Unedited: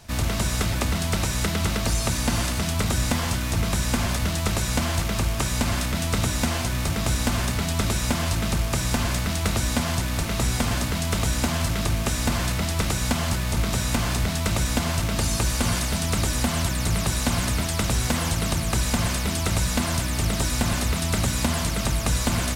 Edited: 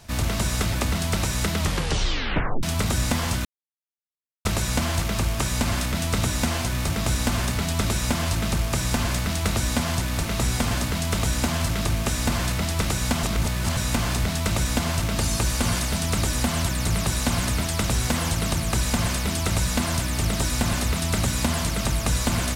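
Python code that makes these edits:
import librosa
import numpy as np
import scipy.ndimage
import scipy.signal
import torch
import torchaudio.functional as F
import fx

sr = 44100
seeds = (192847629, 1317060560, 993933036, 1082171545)

y = fx.edit(x, sr, fx.tape_stop(start_s=1.58, length_s=1.05),
    fx.silence(start_s=3.45, length_s=1.0),
    fx.reverse_span(start_s=13.23, length_s=0.54), tone=tone)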